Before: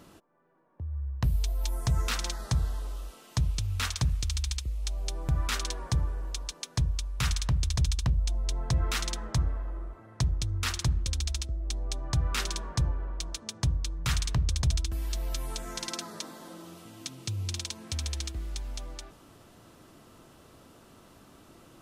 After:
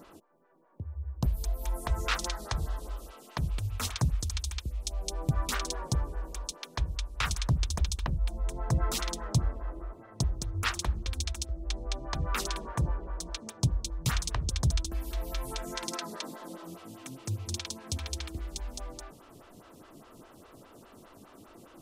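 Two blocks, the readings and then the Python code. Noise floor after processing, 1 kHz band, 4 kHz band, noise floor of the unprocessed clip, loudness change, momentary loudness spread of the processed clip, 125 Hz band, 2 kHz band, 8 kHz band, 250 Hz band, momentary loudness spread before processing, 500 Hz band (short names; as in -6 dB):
-55 dBFS, +2.5 dB, -2.0 dB, -56 dBFS, -2.0 dB, 15 LU, -2.5 dB, 0.0 dB, -1.0 dB, +1.0 dB, 11 LU, +3.0 dB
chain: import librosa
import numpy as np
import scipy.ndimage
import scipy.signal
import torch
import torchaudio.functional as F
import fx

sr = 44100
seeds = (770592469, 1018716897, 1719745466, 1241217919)

y = fx.stagger_phaser(x, sr, hz=4.9)
y = y * librosa.db_to_amplitude(4.5)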